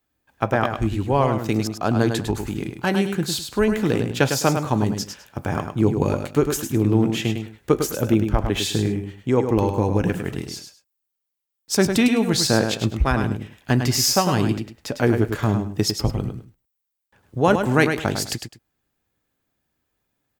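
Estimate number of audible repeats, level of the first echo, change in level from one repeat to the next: 2, -7.0 dB, -13.0 dB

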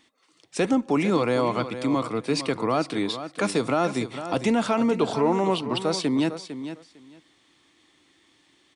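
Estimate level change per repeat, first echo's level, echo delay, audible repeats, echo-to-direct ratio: -16.0 dB, -11.0 dB, 453 ms, 2, -11.0 dB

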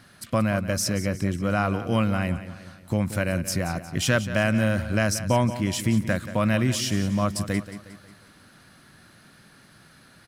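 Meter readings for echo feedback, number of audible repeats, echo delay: 47%, 4, 180 ms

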